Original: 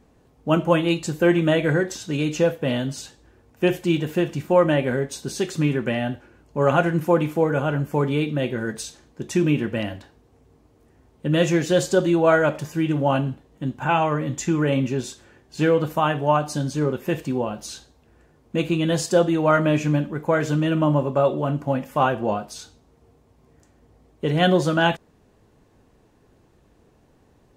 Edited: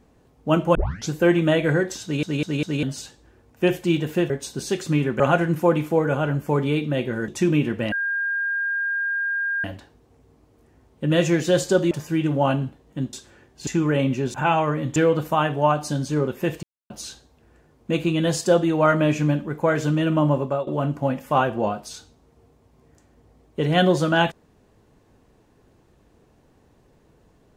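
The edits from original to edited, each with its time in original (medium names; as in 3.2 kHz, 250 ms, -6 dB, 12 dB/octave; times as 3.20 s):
0.75 s: tape start 0.36 s
2.03 s: stutter in place 0.20 s, 4 plays
4.30–4.99 s: delete
5.89–6.65 s: delete
8.73–9.22 s: delete
9.86 s: add tone 1.61 kHz -21.5 dBFS 1.72 s
12.13–12.56 s: delete
13.78–14.40 s: swap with 15.07–15.61 s
17.28–17.55 s: mute
21.07–21.32 s: fade out, to -15.5 dB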